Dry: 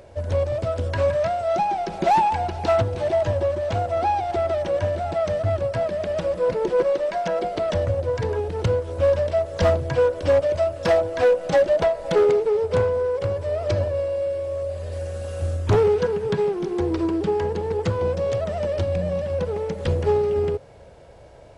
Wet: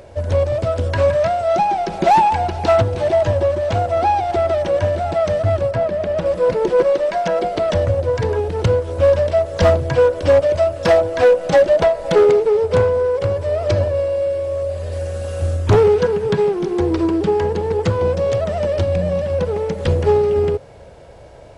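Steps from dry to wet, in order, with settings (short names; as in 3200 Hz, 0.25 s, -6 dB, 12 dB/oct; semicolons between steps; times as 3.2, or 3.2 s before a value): 5.71–6.26 high shelf 3000 Hz -8.5 dB; gain +5.5 dB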